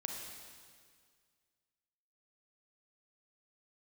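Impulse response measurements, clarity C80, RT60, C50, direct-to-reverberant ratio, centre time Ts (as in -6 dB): 3.5 dB, 1.9 s, 2.0 dB, 1.0 dB, 77 ms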